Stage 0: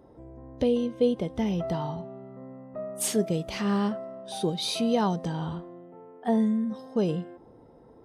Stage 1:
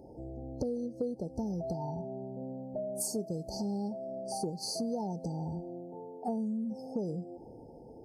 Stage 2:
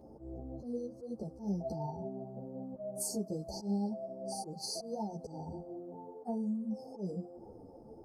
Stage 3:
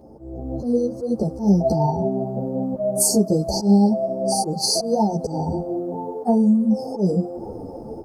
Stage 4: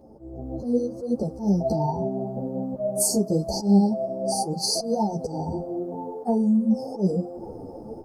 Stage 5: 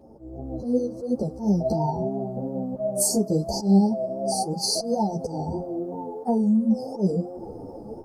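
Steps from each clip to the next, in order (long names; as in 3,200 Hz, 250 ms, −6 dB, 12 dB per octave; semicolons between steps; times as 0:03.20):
brick-wall band-stop 920–4,200 Hz; downward compressor 4 to 1, threshold −37 dBFS, peak gain reduction 15.5 dB; level +3 dB
volume swells 100 ms; noise in a band 230–1,100 Hz −76 dBFS; string-ensemble chorus; level +1 dB
automatic gain control gain up to 11 dB; level +8 dB
flanger 0.83 Hz, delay 3.4 ms, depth 6.4 ms, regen +76%
pitch vibrato 2.9 Hz 43 cents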